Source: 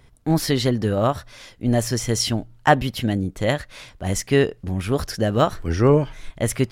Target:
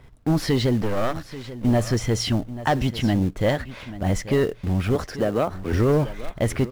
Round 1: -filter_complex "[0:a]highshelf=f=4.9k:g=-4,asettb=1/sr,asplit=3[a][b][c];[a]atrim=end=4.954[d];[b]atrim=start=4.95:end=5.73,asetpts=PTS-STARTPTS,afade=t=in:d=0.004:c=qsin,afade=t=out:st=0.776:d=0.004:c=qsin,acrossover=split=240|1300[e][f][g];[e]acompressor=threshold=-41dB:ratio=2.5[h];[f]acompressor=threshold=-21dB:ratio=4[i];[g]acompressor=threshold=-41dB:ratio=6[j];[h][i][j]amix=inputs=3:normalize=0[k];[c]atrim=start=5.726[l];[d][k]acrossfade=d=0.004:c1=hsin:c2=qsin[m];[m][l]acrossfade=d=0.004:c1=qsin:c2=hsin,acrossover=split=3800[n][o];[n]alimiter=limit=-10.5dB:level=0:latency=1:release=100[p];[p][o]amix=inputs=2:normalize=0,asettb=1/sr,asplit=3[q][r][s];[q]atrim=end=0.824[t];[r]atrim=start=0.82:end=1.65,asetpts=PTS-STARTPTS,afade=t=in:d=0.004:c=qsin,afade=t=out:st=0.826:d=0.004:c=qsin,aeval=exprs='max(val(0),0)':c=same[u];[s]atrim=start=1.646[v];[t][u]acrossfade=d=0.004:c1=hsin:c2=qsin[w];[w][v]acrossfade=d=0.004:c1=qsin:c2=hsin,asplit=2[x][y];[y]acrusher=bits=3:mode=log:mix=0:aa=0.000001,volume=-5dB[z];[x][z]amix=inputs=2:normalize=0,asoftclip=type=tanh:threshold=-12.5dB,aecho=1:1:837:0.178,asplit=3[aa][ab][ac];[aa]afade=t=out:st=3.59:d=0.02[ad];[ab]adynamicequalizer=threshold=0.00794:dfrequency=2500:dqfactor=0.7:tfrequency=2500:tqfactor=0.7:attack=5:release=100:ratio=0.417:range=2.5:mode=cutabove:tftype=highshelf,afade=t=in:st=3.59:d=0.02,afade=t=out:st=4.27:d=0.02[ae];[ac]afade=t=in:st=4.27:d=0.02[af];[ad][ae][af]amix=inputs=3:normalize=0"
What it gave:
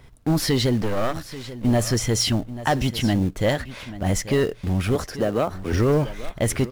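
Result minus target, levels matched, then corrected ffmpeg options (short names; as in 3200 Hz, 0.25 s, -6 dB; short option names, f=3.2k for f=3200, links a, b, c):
8000 Hz band +6.5 dB
-filter_complex "[0:a]highshelf=f=4.9k:g=-15.5,asettb=1/sr,asplit=3[a][b][c];[a]atrim=end=4.954[d];[b]atrim=start=4.95:end=5.73,asetpts=PTS-STARTPTS,afade=t=in:d=0.004:c=qsin,afade=t=out:st=0.776:d=0.004:c=qsin,acrossover=split=240|1300[e][f][g];[e]acompressor=threshold=-41dB:ratio=2.5[h];[f]acompressor=threshold=-21dB:ratio=4[i];[g]acompressor=threshold=-41dB:ratio=6[j];[h][i][j]amix=inputs=3:normalize=0[k];[c]atrim=start=5.726[l];[d][k]acrossfade=d=0.004:c1=hsin:c2=qsin[m];[m][l]acrossfade=d=0.004:c1=qsin:c2=hsin,acrossover=split=3800[n][o];[n]alimiter=limit=-10.5dB:level=0:latency=1:release=100[p];[p][o]amix=inputs=2:normalize=0,asettb=1/sr,asplit=3[q][r][s];[q]atrim=end=0.824[t];[r]atrim=start=0.82:end=1.65,asetpts=PTS-STARTPTS,afade=t=in:d=0.004:c=qsin,afade=t=out:st=0.826:d=0.004:c=qsin,aeval=exprs='max(val(0),0)':c=same[u];[s]atrim=start=1.646[v];[t][u]acrossfade=d=0.004:c1=hsin:c2=qsin[w];[w][v]acrossfade=d=0.004:c1=qsin:c2=hsin,asplit=2[x][y];[y]acrusher=bits=3:mode=log:mix=0:aa=0.000001,volume=-5dB[z];[x][z]amix=inputs=2:normalize=0,asoftclip=type=tanh:threshold=-12.5dB,aecho=1:1:837:0.178,asplit=3[aa][ab][ac];[aa]afade=t=out:st=3.59:d=0.02[ad];[ab]adynamicequalizer=threshold=0.00794:dfrequency=2500:dqfactor=0.7:tfrequency=2500:tqfactor=0.7:attack=5:release=100:ratio=0.417:range=2.5:mode=cutabove:tftype=highshelf,afade=t=in:st=3.59:d=0.02,afade=t=out:st=4.27:d=0.02[ae];[ac]afade=t=in:st=4.27:d=0.02[af];[ad][ae][af]amix=inputs=3:normalize=0"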